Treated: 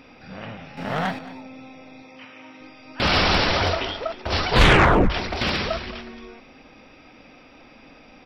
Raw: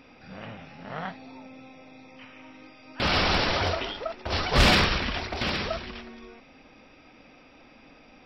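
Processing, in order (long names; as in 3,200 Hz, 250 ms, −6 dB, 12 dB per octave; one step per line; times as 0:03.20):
0:00.77–0:01.19: leveller curve on the samples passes 2
0:02.02–0:02.61: high-pass filter 200 Hz 6 dB per octave
0:04.50: tape stop 0.60 s
single-tap delay 222 ms −17.5 dB
level +4.5 dB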